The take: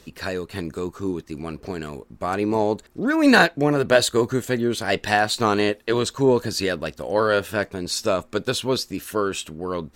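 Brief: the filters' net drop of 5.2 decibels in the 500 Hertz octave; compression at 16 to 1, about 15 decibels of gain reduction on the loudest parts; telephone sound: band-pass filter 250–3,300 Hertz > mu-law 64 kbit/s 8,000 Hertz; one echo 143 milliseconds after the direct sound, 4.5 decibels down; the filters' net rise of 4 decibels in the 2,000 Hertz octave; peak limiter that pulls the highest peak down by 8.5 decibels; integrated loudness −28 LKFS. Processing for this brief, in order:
parametric band 500 Hz −6.5 dB
parametric band 2,000 Hz +6.5 dB
downward compressor 16 to 1, threshold −23 dBFS
brickwall limiter −19 dBFS
band-pass filter 250–3,300 Hz
single-tap delay 143 ms −4.5 dB
level +3.5 dB
mu-law 64 kbit/s 8,000 Hz

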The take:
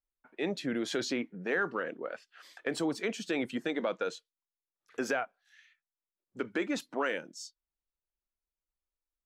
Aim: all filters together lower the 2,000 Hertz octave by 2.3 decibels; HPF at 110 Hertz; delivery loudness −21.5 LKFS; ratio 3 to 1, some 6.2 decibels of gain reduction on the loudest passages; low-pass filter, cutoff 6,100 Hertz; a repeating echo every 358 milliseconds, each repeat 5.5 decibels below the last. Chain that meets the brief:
high-pass filter 110 Hz
low-pass filter 6,100 Hz
parametric band 2,000 Hz −3 dB
downward compressor 3 to 1, threshold −36 dBFS
repeating echo 358 ms, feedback 53%, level −5.5 dB
level +18.5 dB

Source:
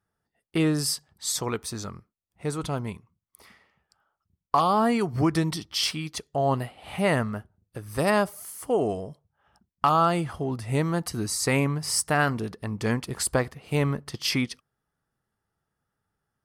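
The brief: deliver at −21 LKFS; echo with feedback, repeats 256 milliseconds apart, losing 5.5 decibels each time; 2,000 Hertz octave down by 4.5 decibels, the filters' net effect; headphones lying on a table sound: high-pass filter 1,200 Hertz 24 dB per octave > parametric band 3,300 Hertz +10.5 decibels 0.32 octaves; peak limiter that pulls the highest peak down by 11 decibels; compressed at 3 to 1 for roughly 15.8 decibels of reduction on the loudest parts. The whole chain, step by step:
parametric band 2,000 Hz −6.5 dB
downward compressor 3 to 1, threshold −41 dBFS
brickwall limiter −31.5 dBFS
high-pass filter 1,200 Hz 24 dB per octave
parametric band 3,300 Hz +10.5 dB 0.32 octaves
repeating echo 256 ms, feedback 53%, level −5.5 dB
level +23.5 dB

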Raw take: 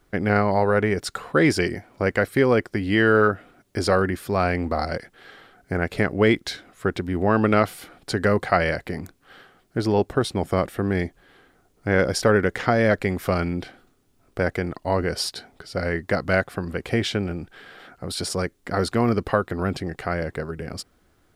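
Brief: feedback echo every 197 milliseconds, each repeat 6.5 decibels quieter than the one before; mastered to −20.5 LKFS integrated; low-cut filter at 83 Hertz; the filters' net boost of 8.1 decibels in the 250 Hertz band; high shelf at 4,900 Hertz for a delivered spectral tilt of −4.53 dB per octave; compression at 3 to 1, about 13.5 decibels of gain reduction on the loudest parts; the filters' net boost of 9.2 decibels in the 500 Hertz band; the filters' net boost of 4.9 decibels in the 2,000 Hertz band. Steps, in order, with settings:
high-pass filter 83 Hz
parametric band 250 Hz +8 dB
parametric band 500 Hz +8.5 dB
parametric band 2,000 Hz +4.5 dB
high-shelf EQ 4,900 Hz +7.5 dB
downward compressor 3 to 1, threshold −24 dBFS
repeating echo 197 ms, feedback 47%, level −6.5 dB
level +5 dB

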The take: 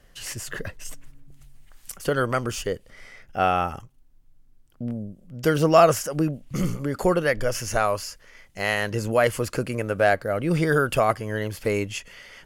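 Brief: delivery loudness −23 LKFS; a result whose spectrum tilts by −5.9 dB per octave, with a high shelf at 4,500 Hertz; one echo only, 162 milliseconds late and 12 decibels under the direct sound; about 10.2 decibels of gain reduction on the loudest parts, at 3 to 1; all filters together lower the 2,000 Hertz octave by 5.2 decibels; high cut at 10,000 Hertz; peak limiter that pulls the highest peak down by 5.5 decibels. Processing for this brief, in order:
low-pass filter 10,000 Hz
parametric band 2,000 Hz −5.5 dB
high-shelf EQ 4,500 Hz −8.5 dB
downward compressor 3 to 1, threshold −25 dBFS
brickwall limiter −20 dBFS
single-tap delay 162 ms −12 dB
level +9 dB

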